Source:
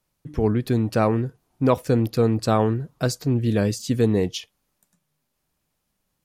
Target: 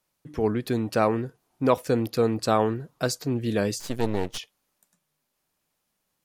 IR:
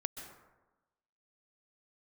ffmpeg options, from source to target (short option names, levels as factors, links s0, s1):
-filter_complex "[0:a]lowshelf=f=180:g=-12,asplit=3[s0][s1][s2];[s0]afade=t=out:st=3.79:d=0.02[s3];[s1]aeval=exprs='max(val(0),0)':c=same,afade=t=in:st=3.79:d=0.02,afade=t=out:st=4.37:d=0.02[s4];[s2]afade=t=in:st=4.37:d=0.02[s5];[s3][s4][s5]amix=inputs=3:normalize=0"